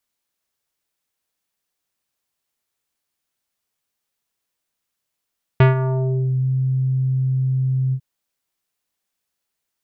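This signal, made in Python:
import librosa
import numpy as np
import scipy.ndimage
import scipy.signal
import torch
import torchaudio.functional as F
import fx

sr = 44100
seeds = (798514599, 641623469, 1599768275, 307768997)

y = fx.sub_voice(sr, note=48, wave='square', cutoff_hz=180.0, q=0.9, env_oct=4.0, env_s=0.82, attack_ms=4.5, decay_s=0.14, sustain_db=-11, release_s=0.07, note_s=2.33, slope=24)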